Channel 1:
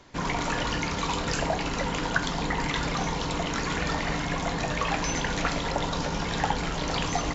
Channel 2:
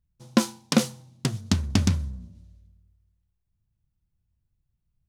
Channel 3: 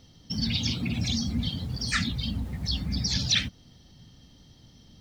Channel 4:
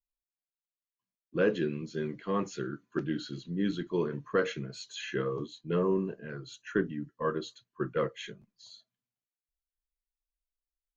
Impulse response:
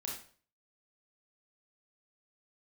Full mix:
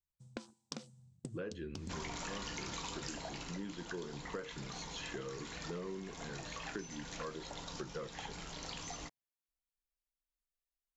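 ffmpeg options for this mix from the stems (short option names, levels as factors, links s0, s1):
-filter_complex "[0:a]highshelf=f=3800:g=11.5,bandreject=f=68.24:t=h:w=4,bandreject=f=136.48:t=h:w=4,bandreject=f=204.72:t=h:w=4,bandreject=f=272.96:t=h:w=4,bandreject=f=341.2:t=h:w=4,bandreject=f=409.44:t=h:w=4,bandreject=f=477.68:t=h:w=4,bandreject=f=545.92:t=h:w=4,bandreject=f=614.16:t=h:w=4,bandreject=f=682.4:t=h:w=4,bandreject=f=750.64:t=h:w=4,bandreject=f=818.88:t=h:w=4,bandreject=f=887.12:t=h:w=4,bandreject=f=955.36:t=h:w=4,bandreject=f=1023.6:t=h:w=4,bandreject=f=1091.84:t=h:w=4,bandreject=f=1160.08:t=h:w=4,bandreject=f=1228.32:t=h:w=4,bandreject=f=1296.56:t=h:w=4,bandreject=f=1364.8:t=h:w=4,bandreject=f=1433.04:t=h:w=4,bandreject=f=1501.28:t=h:w=4,bandreject=f=1569.52:t=h:w=4,bandreject=f=1637.76:t=h:w=4,bandreject=f=1706:t=h:w=4,bandreject=f=1774.24:t=h:w=4,bandreject=f=1842.48:t=h:w=4,bandreject=f=1910.72:t=h:w=4,bandreject=f=1978.96:t=h:w=4,bandreject=f=2047.2:t=h:w=4,bandreject=f=2115.44:t=h:w=4,bandreject=f=2183.68:t=h:w=4,bandreject=f=2251.92:t=h:w=4,bandreject=f=2320.16:t=h:w=4,bandreject=f=2388.4:t=h:w=4,adelay=1750,volume=0.501,afade=t=out:st=2.76:d=0.78:silence=0.251189[s0];[1:a]afwtdn=0.0178,acompressor=threshold=0.0355:ratio=5,lowpass=f=8000:t=q:w=6.3,volume=0.355[s1];[3:a]volume=0.562[s2];[s0][s1][s2]amix=inputs=3:normalize=0,acompressor=threshold=0.01:ratio=6"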